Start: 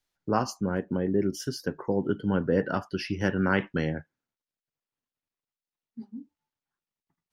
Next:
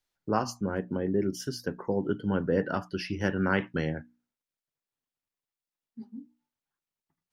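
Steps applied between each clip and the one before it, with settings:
mains-hum notches 60/120/180/240/300 Hz
level −1.5 dB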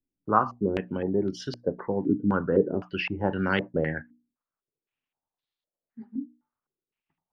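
low-pass on a step sequencer 3.9 Hz 280–3,800 Hz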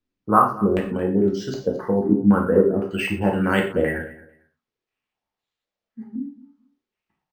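repeating echo 224 ms, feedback 19%, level −18.5 dB
reverb whose tail is shaped and stops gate 150 ms falling, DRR −1 dB
linearly interpolated sample-rate reduction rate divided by 4×
level +2.5 dB

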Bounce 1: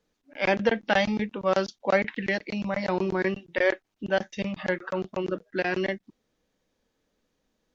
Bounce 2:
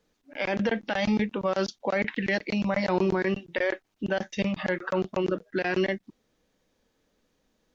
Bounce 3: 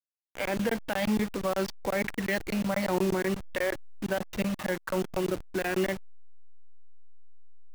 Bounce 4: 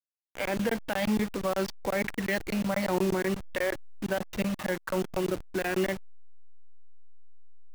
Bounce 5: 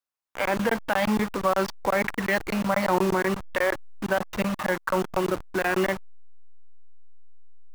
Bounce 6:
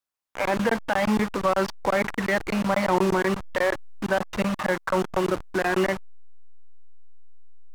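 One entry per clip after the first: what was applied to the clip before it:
brickwall limiter −19.5 dBFS, peak gain reduction 11.5 dB; level +3.5 dB
hold until the input has moved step −30.5 dBFS; level −2 dB
no processing that can be heard
parametric band 1,100 Hz +9 dB 1.3 octaves; level +2 dB
slew-rate limiting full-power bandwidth 130 Hz; level +1.5 dB

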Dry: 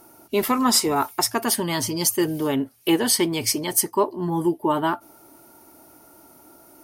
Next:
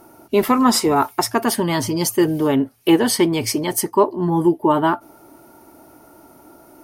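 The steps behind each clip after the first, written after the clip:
high-shelf EQ 2,700 Hz −8.5 dB
level +6 dB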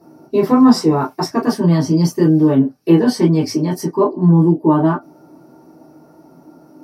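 convolution reverb, pre-delay 3 ms, DRR −6 dB
level −16 dB

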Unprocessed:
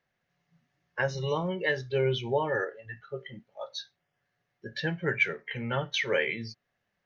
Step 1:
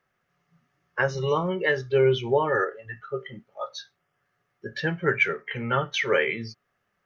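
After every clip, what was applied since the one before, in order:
thirty-one-band graphic EQ 400 Hz +5 dB, 1,250 Hz +11 dB, 4,000 Hz −5 dB
level +3 dB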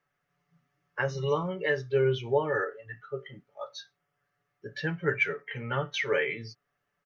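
comb filter 6.9 ms, depth 50%
level −6 dB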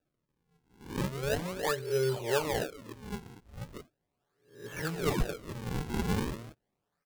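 peak hold with a rise ahead of every peak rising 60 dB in 0.46 s
sample-and-hold swept by an LFO 41×, swing 160% 0.38 Hz
level −4.5 dB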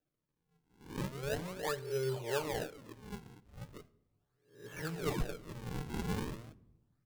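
rectangular room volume 3,400 cubic metres, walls furnished, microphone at 0.48 metres
level −6 dB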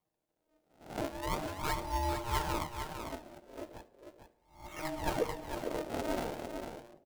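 single-tap delay 452 ms −7 dB
ring modulation 470 Hz
level +4.5 dB

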